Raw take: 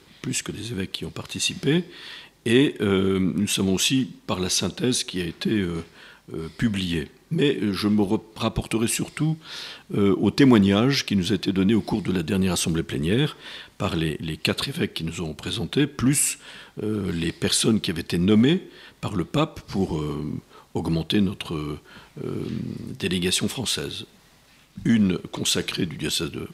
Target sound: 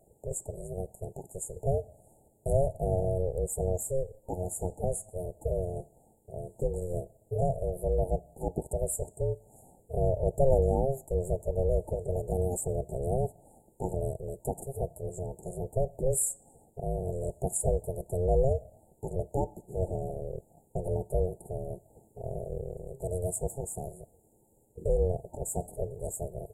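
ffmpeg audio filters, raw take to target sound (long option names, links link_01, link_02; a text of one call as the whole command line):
ffmpeg -i in.wav -af "afftfilt=real='re*(1-between(b*sr/4096,640,7000))':imag='im*(1-between(b*sr/4096,640,7000))':win_size=4096:overlap=0.75,aeval=exprs='val(0)*sin(2*PI*270*n/s)':channel_layout=same,volume=-4dB" out.wav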